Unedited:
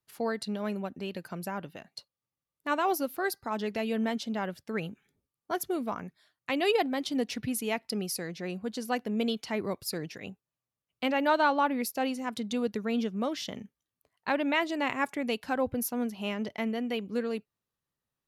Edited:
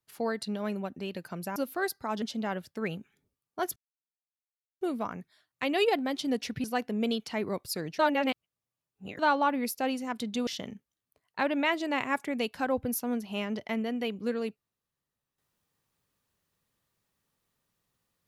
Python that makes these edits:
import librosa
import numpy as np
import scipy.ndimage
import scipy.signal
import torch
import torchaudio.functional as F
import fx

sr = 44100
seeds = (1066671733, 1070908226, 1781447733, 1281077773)

y = fx.edit(x, sr, fx.cut(start_s=1.56, length_s=1.42),
    fx.cut(start_s=3.64, length_s=0.5),
    fx.insert_silence(at_s=5.68, length_s=1.05),
    fx.cut(start_s=7.51, length_s=1.3),
    fx.reverse_span(start_s=10.16, length_s=1.2),
    fx.cut(start_s=12.64, length_s=0.72), tone=tone)